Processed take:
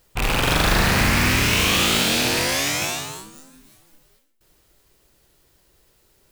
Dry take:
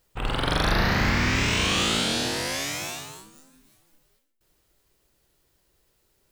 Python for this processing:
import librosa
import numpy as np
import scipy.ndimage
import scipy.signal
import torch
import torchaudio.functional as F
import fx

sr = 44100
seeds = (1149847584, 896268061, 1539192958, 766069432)

p1 = fx.rattle_buzz(x, sr, strikes_db=-36.0, level_db=-17.0)
p2 = (np.mod(10.0 ** (22.5 / 20.0) * p1 + 1.0, 2.0) - 1.0) / 10.0 ** (22.5 / 20.0)
p3 = p1 + (p2 * librosa.db_to_amplitude(-3.5))
y = p3 * librosa.db_to_amplitude(3.5)